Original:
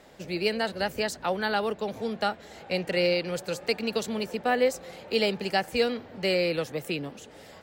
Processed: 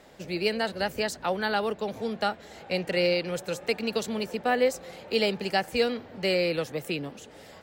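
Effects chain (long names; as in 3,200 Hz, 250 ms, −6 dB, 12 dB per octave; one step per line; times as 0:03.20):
0:03.26–0:03.76: notch filter 4,600 Hz, Q 8.2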